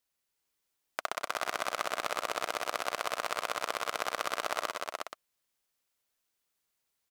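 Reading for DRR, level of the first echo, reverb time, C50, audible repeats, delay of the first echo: none, -17.0 dB, none, none, 4, 95 ms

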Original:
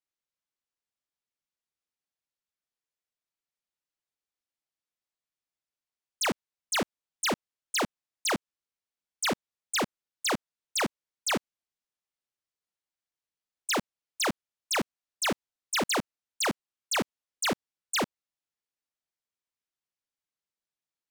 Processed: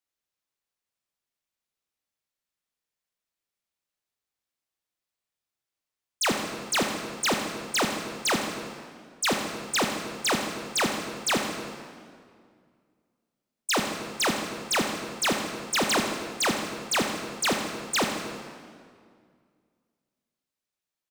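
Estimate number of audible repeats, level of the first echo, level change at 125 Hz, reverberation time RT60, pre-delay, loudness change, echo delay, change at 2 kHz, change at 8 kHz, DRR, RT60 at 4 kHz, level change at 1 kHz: 2, -11.0 dB, +4.5 dB, 2.1 s, 15 ms, +4.0 dB, 81 ms, +4.0 dB, +4.0 dB, 2.5 dB, 1.6 s, +4.5 dB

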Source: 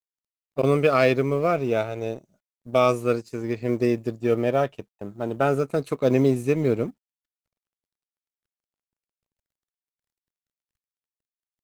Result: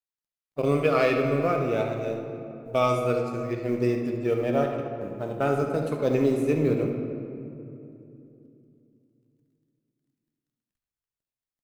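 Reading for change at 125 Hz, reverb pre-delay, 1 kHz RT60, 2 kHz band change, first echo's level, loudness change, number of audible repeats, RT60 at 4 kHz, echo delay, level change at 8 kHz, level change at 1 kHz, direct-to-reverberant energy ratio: -2.0 dB, 6 ms, 2.6 s, -2.5 dB, -11.0 dB, -2.5 dB, 1, 1.4 s, 71 ms, n/a, -2.0 dB, 2.0 dB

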